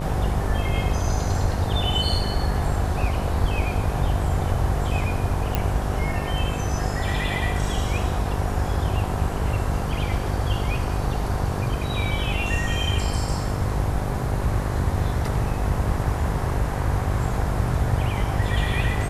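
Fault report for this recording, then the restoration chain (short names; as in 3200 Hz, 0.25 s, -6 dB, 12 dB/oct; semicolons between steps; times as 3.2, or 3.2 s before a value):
buzz 50 Hz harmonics 22 -28 dBFS
5.55 pop -8 dBFS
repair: de-click; de-hum 50 Hz, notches 22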